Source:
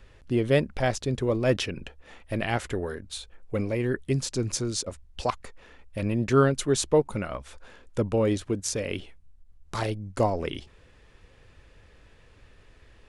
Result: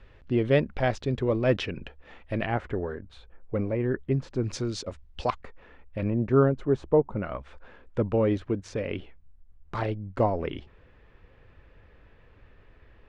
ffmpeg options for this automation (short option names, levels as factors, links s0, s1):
-af "asetnsamples=n=441:p=0,asendcmd='2.46 lowpass f 1600;4.44 lowpass f 3900;5.41 lowpass f 2300;6.1 lowpass f 1100;7.23 lowpass f 2300',lowpass=3300"